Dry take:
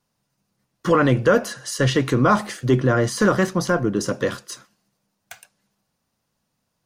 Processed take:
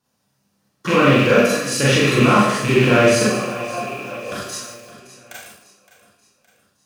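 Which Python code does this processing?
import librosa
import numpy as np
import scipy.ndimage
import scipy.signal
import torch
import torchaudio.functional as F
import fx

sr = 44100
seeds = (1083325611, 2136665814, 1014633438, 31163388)

p1 = fx.rattle_buzz(x, sr, strikes_db=-26.0, level_db=-14.0)
p2 = fx.over_compress(p1, sr, threshold_db=-19.0, ratio=-1.0)
p3 = p1 + (p2 * librosa.db_to_amplitude(-1.0))
p4 = scipy.signal.sosfilt(scipy.signal.butter(2, 60.0, 'highpass', fs=sr, output='sos'), p3)
p5 = fx.notch(p4, sr, hz=2100.0, q=29.0)
p6 = fx.vowel_filter(p5, sr, vowel='a', at=(3.23, 4.32))
p7 = p6 + fx.echo_feedback(p6, sr, ms=566, feedback_pct=48, wet_db=-16.0, dry=0)
p8 = fx.rev_schroeder(p7, sr, rt60_s=0.59, comb_ms=29, drr_db=-6.5)
p9 = fx.echo_crushed(p8, sr, ms=148, feedback_pct=35, bits=5, wet_db=-10.5)
y = p9 * librosa.db_to_amplitude(-7.5)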